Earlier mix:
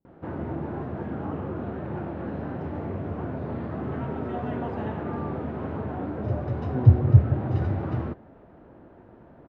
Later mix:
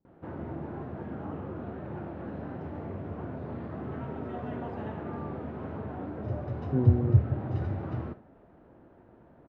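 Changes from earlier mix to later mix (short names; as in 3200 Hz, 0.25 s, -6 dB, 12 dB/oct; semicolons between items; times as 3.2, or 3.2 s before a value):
background -7.5 dB; reverb: on, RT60 0.35 s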